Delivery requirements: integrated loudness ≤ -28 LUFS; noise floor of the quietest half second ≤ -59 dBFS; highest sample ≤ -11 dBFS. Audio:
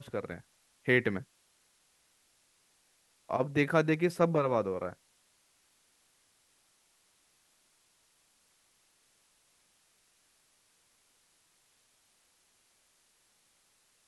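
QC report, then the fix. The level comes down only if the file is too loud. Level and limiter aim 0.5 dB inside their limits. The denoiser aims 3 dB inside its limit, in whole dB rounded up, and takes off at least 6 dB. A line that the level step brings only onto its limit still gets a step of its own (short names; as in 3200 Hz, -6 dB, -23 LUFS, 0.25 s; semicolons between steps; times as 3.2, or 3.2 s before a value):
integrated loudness -30.5 LUFS: OK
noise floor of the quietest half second -70 dBFS: OK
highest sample -12.5 dBFS: OK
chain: none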